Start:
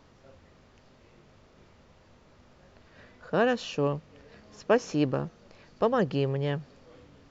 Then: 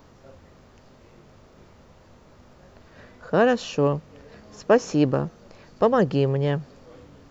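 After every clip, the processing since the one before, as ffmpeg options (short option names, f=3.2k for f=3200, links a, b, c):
-filter_complex "[0:a]aemphasis=mode=production:type=50kf,acrossover=split=1600[a][b];[a]acontrast=87[c];[c][b]amix=inputs=2:normalize=0,volume=-1dB"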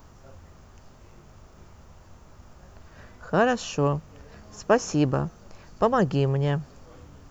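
-af "equalizer=f=125:t=o:w=1:g=-5,equalizer=f=250:t=o:w=1:g=-8,equalizer=f=500:t=o:w=1:g=-10,equalizer=f=1k:t=o:w=1:g=-3,equalizer=f=2k:t=o:w=1:g=-7,equalizer=f=4k:t=o:w=1:g=-9,volume=7.5dB"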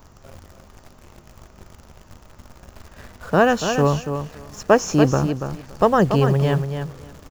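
-filter_complex "[0:a]asplit=2[a][b];[b]acrusher=bits=6:mix=0:aa=0.000001,volume=-5dB[c];[a][c]amix=inputs=2:normalize=0,aecho=1:1:285|570|855:0.398|0.0637|0.0102,volume=1.5dB"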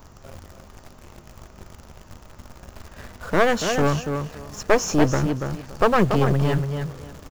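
-af "aeval=exprs='clip(val(0),-1,0.0596)':c=same,volume=1.5dB"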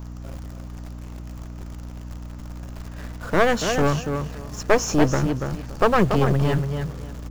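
-af "aeval=exprs='val(0)+0.02*(sin(2*PI*60*n/s)+sin(2*PI*2*60*n/s)/2+sin(2*PI*3*60*n/s)/3+sin(2*PI*4*60*n/s)/4+sin(2*PI*5*60*n/s)/5)':c=same"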